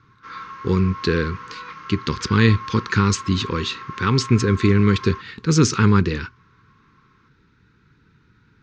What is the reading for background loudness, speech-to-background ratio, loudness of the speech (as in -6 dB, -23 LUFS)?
-35.5 LUFS, 15.5 dB, -20.0 LUFS